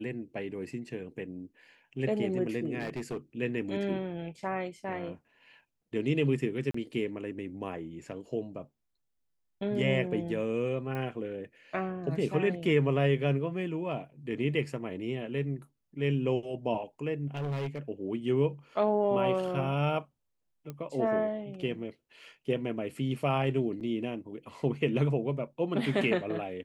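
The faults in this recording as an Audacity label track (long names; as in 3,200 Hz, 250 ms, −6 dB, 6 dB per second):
2.790000	3.170000	clipping −30.5 dBFS
6.710000	6.740000	drop-out 34 ms
10.950000	10.950000	click −25 dBFS
17.340000	17.790000	clipping −30 dBFS
20.700000	20.700000	click −26 dBFS
23.800000	23.810000	drop-out 8 ms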